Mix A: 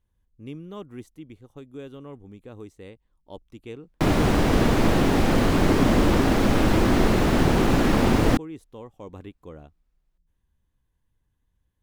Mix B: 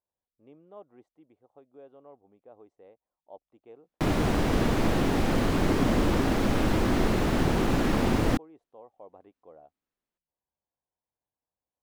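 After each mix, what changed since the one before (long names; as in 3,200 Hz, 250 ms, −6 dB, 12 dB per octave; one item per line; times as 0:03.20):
speech: add resonant band-pass 690 Hz, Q 3.4
background −5.0 dB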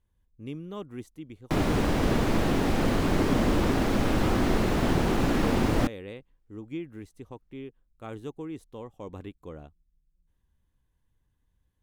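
speech: remove resonant band-pass 690 Hz, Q 3.4
background: entry −2.50 s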